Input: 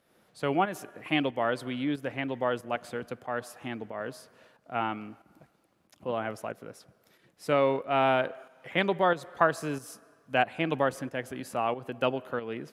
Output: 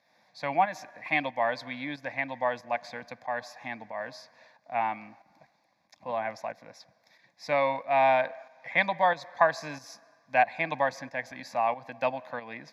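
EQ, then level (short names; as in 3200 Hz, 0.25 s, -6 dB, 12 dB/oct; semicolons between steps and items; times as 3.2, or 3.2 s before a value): HPF 590 Hz 6 dB/oct; LPF 6900 Hz 12 dB/oct; fixed phaser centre 2000 Hz, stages 8; +6.5 dB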